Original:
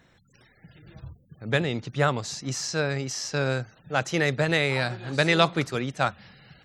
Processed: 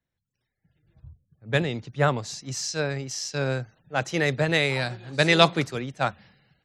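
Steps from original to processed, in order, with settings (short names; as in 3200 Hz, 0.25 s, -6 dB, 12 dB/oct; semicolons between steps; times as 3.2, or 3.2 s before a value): bell 1300 Hz -3 dB 0.44 oct; three-band expander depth 70%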